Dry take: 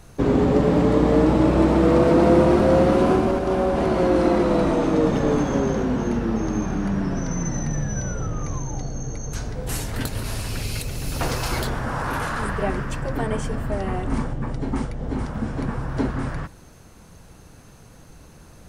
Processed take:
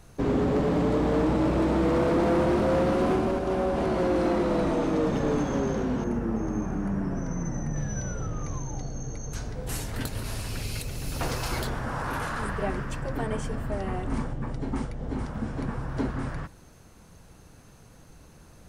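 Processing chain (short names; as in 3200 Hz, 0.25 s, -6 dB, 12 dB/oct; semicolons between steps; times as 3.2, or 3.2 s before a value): 6.04–7.76 bell 3900 Hz -13 dB 1.2 oct; overloaded stage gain 14.5 dB; gain -5 dB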